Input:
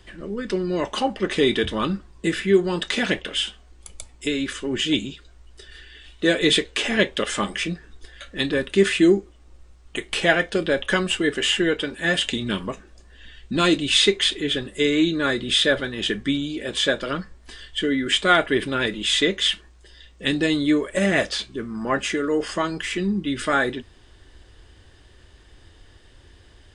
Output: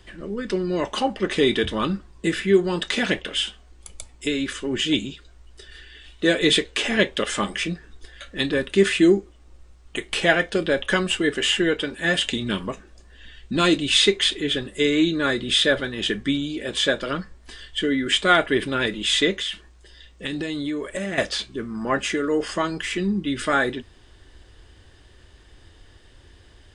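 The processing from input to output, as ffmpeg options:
ffmpeg -i in.wav -filter_complex "[0:a]asettb=1/sr,asplit=3[link_01][link_02][link_03];[link_01]atrim=end=19.314[link_04];[link_02]atrim=start=19.31:end=21.18,asetpts=PTS-STARTPTS,afade=type=in:duration=0.004:curve=qsin,afade=type=out:start_time=1.866:duration=0.004:curve=qsin,acompressor=threshold=-24dB:ratio=6:attack=3.2:release=140:knee=1:detection=peak[link_05];[link_03]atrim=start=21.176[link_06];[link_04][link_05]acrossfade=duration=0.004:curve1=hsin:curve2=qsin[link_07];[link_07][link_06]acrossfade=duration=0.004:curve1=qsin:curve2=hsin" out.wav

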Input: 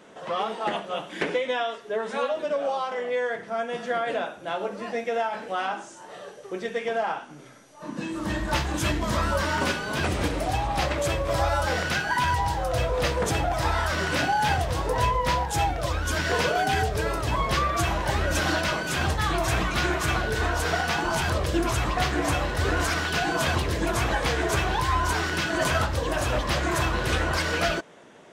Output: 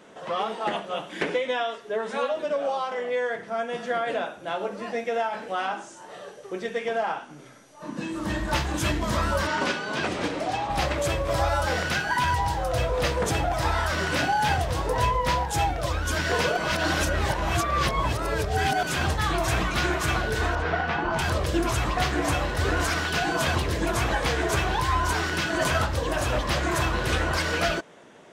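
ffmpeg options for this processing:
ffmpeg -i in.wav -filter_complex "[0:a]asettb=1/sr,asplit=3[link_01][link_02][link_03];[link_01]atrim=end=9.474[link_04];[link_02]atrim=start=9.47:end=10.7,asetpts=PTS-STARTPTS,afade=type=in:duration=0.004:curve=qsin,afade=type=out:start_time=1.226:duration=0.004:curve=qsin,highpass=180,lowpass=6700[link_05];[link_03]atrim=start=10.696[link_06];[link_04][link_05]acrossfade=duration=0.004:curve1=hsin:curve2=qsin[link_07];[link_07][link_06]acrossfade=duration=0.004:curve1=qsin:curve2=hsin,asettb=1/sr,asplit=3[link_08][link_09][link_10];[link_08]atrim=end=20.554[link_11];[link_09]atrim=start=20.55:end=21.19,asetpts=PTS-STARTPTS,afade=type=in:duration=0.004:curve=qsin,afade=type=out:start_time=0.636:duration=0.004:curve=qsin,lowpass=2400[link_12];[link_10]atrim=start=21.186[link_13];[link_11][link_12]acrossfade=duration=0.004:curve1=hsin:curve2=qsin[link_14];[link_14][link_13]acrossfade=duration=0.004:curve1=qsin:curve2=hsin,asplit=3[link_15][link_16][link_17];[link_15]atrim=end=16.572[link_18];[link_16]atrim=start=16.568:end=18.832,asetpts=PTS-STARTPTS,areverse[link_19];[link_17]atrim=start=18.828[link_20];[link_18][link_19]acrossfade=duration=0.004:curve1=hsin:curve2=hsin[link_21];[link_21][link_20]acrossfade=duration=0.004:curve1=hsin:curve2=hsin" out.wav

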